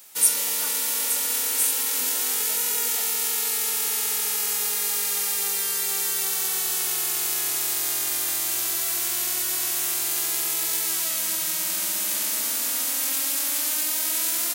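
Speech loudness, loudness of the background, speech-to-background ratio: -25.5 LUFS, -22.0 LUFS, -3.5 dB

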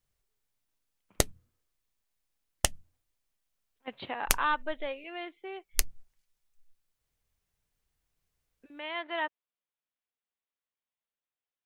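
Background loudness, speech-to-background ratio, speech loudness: -32.0 LUFS, -3.5 dB, -35.5 LUFS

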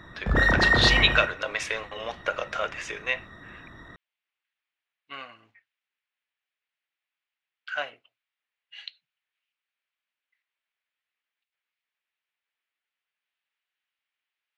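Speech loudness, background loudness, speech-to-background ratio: -27.0 LUFS, -22.5 LUFS, -4.5 dB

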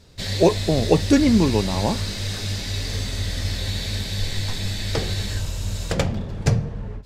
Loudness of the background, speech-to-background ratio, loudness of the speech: -26.5 LUFS, 6.5 dB, -20.0 LUFS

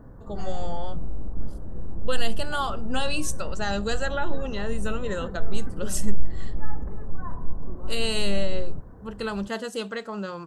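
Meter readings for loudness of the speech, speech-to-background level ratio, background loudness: -31.0 LUFS, 8.0 dB, -39.0 LUFS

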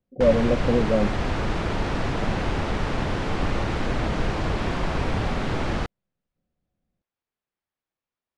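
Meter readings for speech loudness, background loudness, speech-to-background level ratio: -23.0 LUFS, -27.0 LUFS, 4.0 dB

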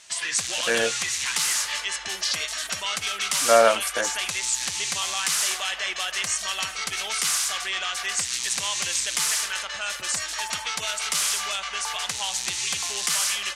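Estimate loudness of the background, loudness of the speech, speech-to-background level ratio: -24.5 LUFS, -22.5 LUFS, 2.0 dB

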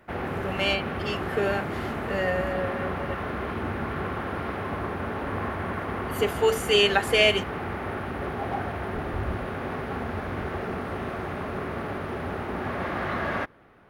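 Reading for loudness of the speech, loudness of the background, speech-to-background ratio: -25.5 LUFS, -31.5 LUFS, 6.0 dB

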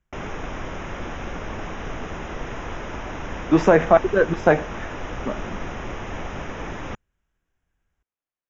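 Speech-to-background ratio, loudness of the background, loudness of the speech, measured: 14.5 dB, -33.0 LUFS, -18.5 LUFS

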